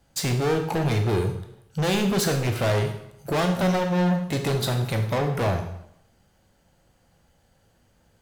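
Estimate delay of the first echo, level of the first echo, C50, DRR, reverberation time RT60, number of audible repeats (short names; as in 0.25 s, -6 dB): none, none, 7.5 dB, 4.0 dB, 0.75 s, none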